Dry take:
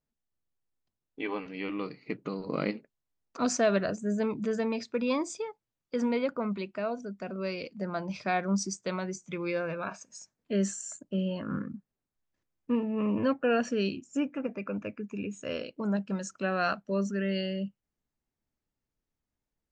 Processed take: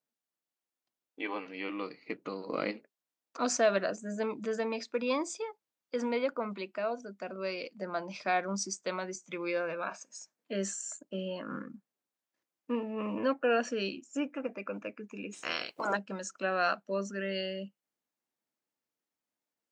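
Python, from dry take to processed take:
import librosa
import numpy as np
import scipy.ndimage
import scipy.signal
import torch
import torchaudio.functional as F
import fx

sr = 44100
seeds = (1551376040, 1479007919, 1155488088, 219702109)

y = fx.spec_clip(x, sr, under_db=26, at=(15.32, 15.95), fade=0.02)
y = scipy.signal.sosfilt(scipy.signal.butter(2, 320.0, 'highpass', fs=sr, output='sos'), y)
y = fx.notch(y, sr, hz=410.0, q=12.0)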